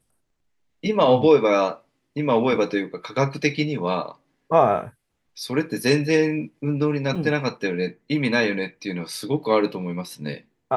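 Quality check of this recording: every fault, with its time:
7.15 gap 4.4 ms

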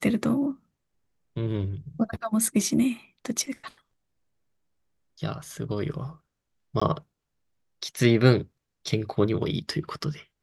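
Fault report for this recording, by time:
6.8–6.82 gap 15 ms

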